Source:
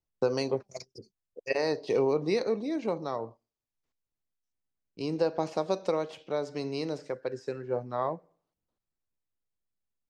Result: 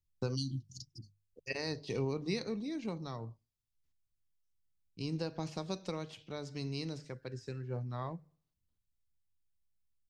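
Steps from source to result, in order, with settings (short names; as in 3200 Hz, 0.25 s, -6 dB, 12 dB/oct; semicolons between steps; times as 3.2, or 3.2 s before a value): notches 50/100/150 Hz; spectral repair 0.38–1.22, 360–2800 Hz after; EQ curve 100 Hz 0 dB, 550 Hz -23 dB, 3500 Hz -10 dB; gain +8 dB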